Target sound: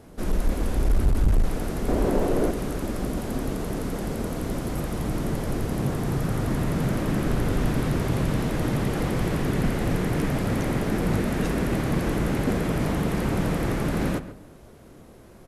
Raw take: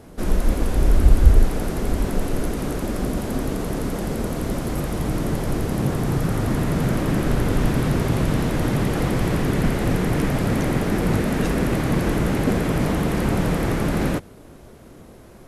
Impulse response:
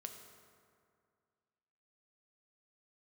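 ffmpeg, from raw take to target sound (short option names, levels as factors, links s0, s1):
-filter_complex "[0:a]asettb=1/sr,asplit=3[s0][s1][s2];[s0]atrim=end=1.884[s3];[s1]atrim=start=1.88:end=2.51,asetpts=PTS-STARTPTS,afade=t=in:d=0.004:c=qsin,afade=t=out:st=0.626:d=0.004:c=qsin,equalizer=f=500:t=o:w=2.2:g=10.5[s4];[s2]atrim=start=2.506[s5];[s3][s4]acrossfade=d=0.004:c1=hsin:c2=qsin[s6];[s6][s5]acrossfade=d=0.004:c1=qsin:c2=hsin,asoftclip=type=hard:threshold=0.266,asplit=2[s7][s8];[s8]adelay=135,lowpass=f=2200:p=1,volume=0.237,asplit=2[s9][s10];[s10]adelay=135,lowpass=f=2200:p=1,volume=0.3,asplit=2[s11][s12];[s12]adelay=135,lowpass=f=2200:p=1,volume=0.3[s13];[s7][s9][s11][s13]amix=inputs=4:normalize=0,volume=0.631"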